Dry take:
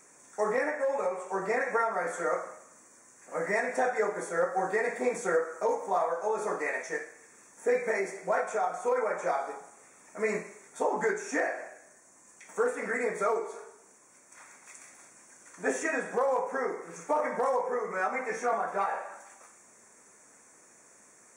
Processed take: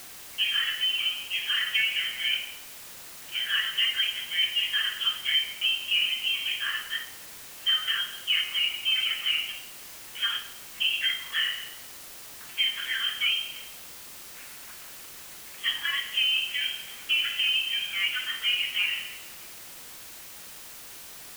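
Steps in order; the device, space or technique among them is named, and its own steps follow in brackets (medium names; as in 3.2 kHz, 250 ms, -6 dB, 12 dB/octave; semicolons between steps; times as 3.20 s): scrambled radio voice (band-pass 390–2700 Hz; frequency inversion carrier 3.6 kHz; white noise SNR 14 dB); trim +3 dB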